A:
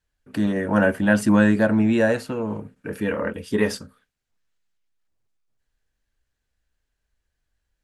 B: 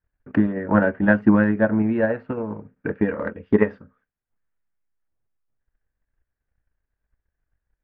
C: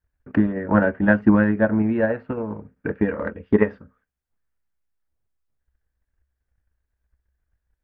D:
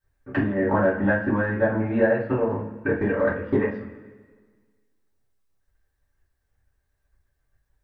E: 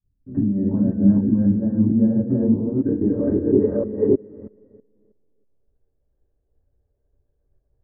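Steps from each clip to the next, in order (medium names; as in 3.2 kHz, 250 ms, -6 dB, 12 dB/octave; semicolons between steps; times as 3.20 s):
low-pass 2 kHz 24 dB/octave; transient shaper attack +11 dB, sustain -3 dB; trim -3 dB
peaking EQ 65 Hz +12.5 dB 0.34 oct
compression 6:1, threshold -21 dBFS, peak gain reduction 11.5 dB; two-slope reverb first 0.31 s, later 1.6 s, from -18 dB, DRR -9 dB; trim -3.5 dB
chunks repeated in reverse 320 ms, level -1 dB; low-pass sweep 220 Hz -> 480 Hz, 2.06–4.46 s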